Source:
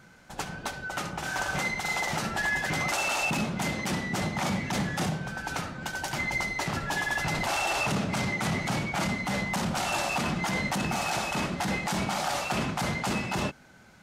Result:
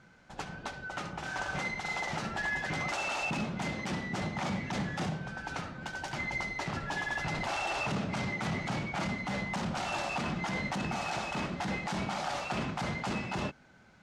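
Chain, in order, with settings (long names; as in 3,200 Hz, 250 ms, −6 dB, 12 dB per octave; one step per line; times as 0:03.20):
high-frequency loss of the air 75 metres
level −4.5 dB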